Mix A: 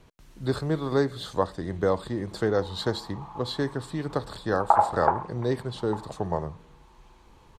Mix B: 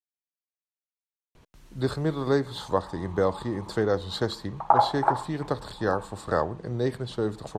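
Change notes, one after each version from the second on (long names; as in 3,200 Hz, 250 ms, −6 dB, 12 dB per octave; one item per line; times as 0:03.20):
speech: entry +1.35 s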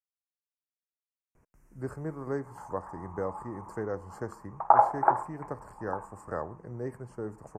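speech −9.5 dB
master: add Butterworth band-reject 3,700 Hz, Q 0.85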